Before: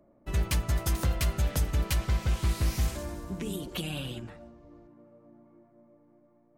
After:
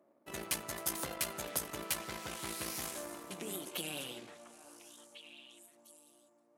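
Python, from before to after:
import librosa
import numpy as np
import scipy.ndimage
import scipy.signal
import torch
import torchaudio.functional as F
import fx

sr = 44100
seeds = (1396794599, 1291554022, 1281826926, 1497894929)

y = np.where(x < 0.0, 10.0 ** (-7.0 / 20.0) * x, x)
y = scipy.signal.sosfilt(scipy.signal.butter(2, 310.0, 'highpass', fs=sr, output='sos'), y)
y = fx.peak_eq(y, sr, hz=11000.0, db=8.0, octaves=0.83)
y = fx.echo_stepped(y, sr, ms=700, hz=1100.0, octaves=1.4, feedback_pct=70, wet_db=-7.0)
y = y * librosa.db_to_amplitude(-2.0)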